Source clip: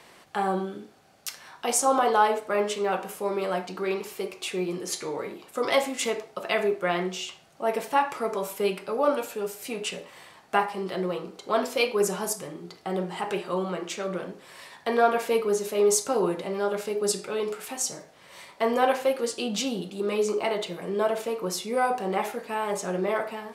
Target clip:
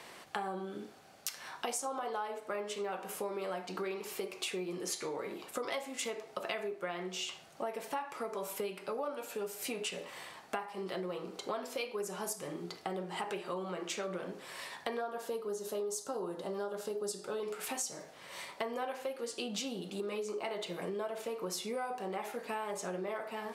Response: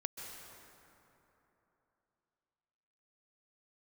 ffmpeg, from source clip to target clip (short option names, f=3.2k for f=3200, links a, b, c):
-filter_complex "[0:a]asettb=1/sr,asplit=3[a][b][c];[a]atrim=end=15.014[d];[b]atrim=start=15.01:end=17.43,asetpts=PTS-STARTPTS,afade=t=in:d=0.004:c=qsin,afade=t=out:st=2.416:d=0.004:c=qsin,equalizer=f=2.3k:t=o:w=0.47:g=-14[e];[c]atrim=start=17.426[f];[d][e]acrossfade=d=0.004:c1=hsin:c2=qsin[g];[g][f]acrossfade=d=0.004:c1=qsin:c2=hsin,acompressor=threshold=-35dB:ratio=12,lowshelf=f=180:g=-5.5,volume=1dB"